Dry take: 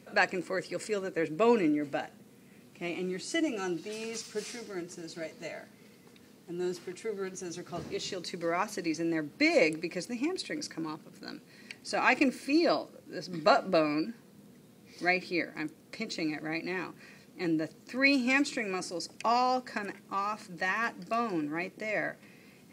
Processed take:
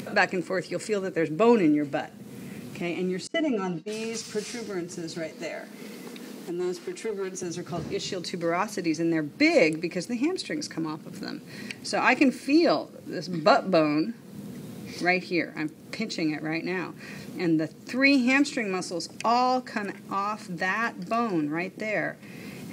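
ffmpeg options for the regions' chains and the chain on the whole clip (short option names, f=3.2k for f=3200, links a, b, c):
-filter_complex "[0:a]asettb=1/sr,asplit=3[a][b][c];[a]atrim=end=3.274[d];[b]atrim=start=3.27:end=3.88,asetpts=PTS-STARTPTS,afade=t=in:d=0.004:c=qsin,afade=t=out:st=0.606:d=0.004:c=qsin,lowpass=f=1.8k:p=1,agate=range=-33dB:threshold=-36dB:ratio=3:release=100:detection=peak,aecho=1:1:4.4:0.96,atrim=end_sample=26901[e];[c]atrim=start=3.876[f];[d][e]acrossfade=d=0.004:c1=hsin:c2=qsin[g];[g][f]acrossfade=d=0.004:c1=qsin:c2=hsin,asettb=1/sr,asplit=3[h][i][j];[h]atrim=end=5.324[k];[i]atrim=start=5.32:end=7.43,asetpts=PTS-STARTPTS,afade=t=in:d=0.004:c=qsin,afade=t=out:st=2.106:d=0.004:c=qsin,highpass=f=200:w=0.5412,highpass=f=200:w=1.3066,aeval=exprs='clip(val(0),-1,0.0224)':c=same[l];[j]atrim=start=7.426[m];[k][l]acrossfade=d=0.004:c1=hsin:c2=qsin[n];[n][m]acrossfade=d=0.004:c1=qsin:c2=hsin,highpass=110,lowshelf=f=170:g=10.5,acompressor=mode=upward:threshold=-32dB:ratio=2.5,volume=3.5dB"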